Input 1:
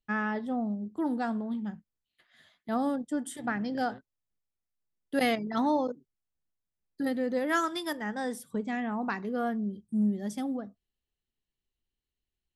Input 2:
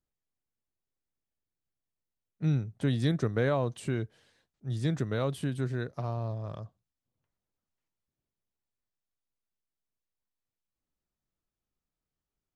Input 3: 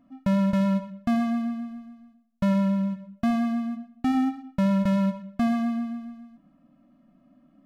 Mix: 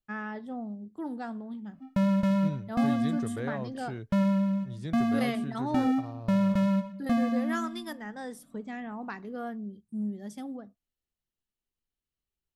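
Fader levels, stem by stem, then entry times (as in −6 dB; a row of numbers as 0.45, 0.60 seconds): −6.0, −8.0, −2.5 decibels; 0.00, 0.00, 1.70 seconds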